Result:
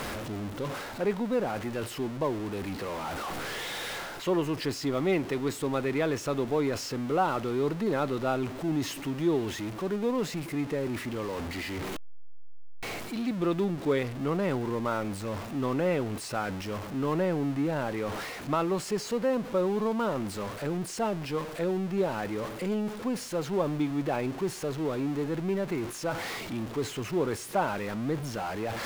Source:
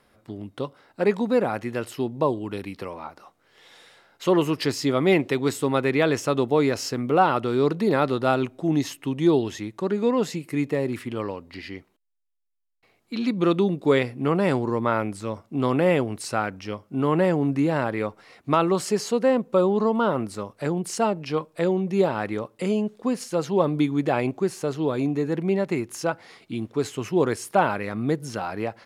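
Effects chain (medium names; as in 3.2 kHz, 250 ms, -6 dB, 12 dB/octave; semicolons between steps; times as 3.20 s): jump at every zero crossing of -25.5 dBFS; treble shelf 4.6 kHz -6.5 dB; reverse; upward compressor, threshold -22 dBFS; reverse; trim -8.5 dB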